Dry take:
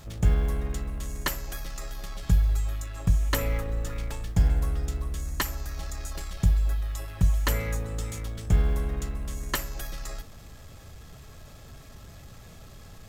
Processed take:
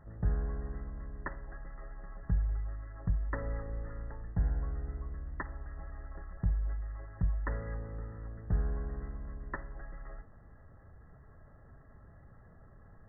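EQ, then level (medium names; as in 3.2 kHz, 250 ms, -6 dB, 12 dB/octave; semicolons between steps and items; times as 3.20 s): brick-wall FIR low-pass 2 kHz; -9.0 dB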